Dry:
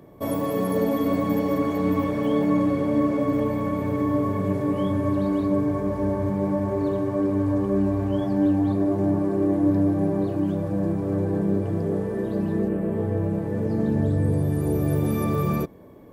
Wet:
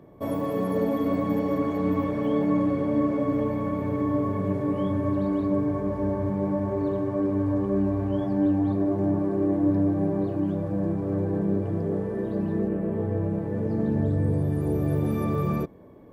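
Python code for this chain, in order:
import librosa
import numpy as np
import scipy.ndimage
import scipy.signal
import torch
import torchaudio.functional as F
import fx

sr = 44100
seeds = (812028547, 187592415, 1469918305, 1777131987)

y = fx.high_shelf(x, sr, hz=3700.0, db=-9.5)
y = y * 10.0 ** (-2.0 / 20.0)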